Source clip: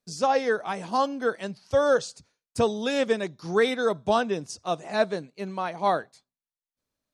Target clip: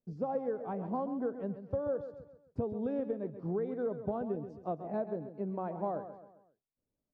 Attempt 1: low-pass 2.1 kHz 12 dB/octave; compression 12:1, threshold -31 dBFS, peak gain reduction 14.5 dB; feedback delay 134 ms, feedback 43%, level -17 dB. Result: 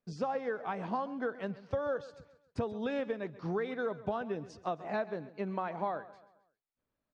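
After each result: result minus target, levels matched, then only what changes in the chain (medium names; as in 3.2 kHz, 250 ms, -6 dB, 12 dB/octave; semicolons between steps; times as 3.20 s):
2 kHz band +14.0 dB; echo-to-direct -6 dB
change: low-pass 550 Hz 12 dB/octave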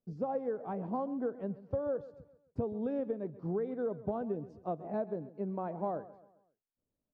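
echo-to-direct -6 dB
change: feedback delay 134 ms, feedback 43%, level -11 dB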